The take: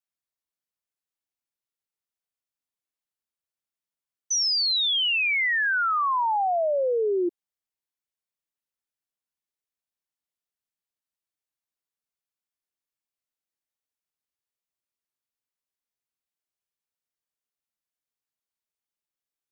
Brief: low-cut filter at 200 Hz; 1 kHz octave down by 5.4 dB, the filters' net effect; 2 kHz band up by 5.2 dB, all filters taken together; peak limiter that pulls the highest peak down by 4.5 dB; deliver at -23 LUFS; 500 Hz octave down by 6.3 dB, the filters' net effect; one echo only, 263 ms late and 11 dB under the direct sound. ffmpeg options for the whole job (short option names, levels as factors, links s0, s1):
-af "highpass=200,equalizer=f=500:t=o:g=-6,equalizer=f=1000:t=o:g=-8.5,equalizer=f=2000:t=o:g=9,alimiter=limit=0.126:level=0:latency=1,aecho=1:1:263:0.282,volume=0.841"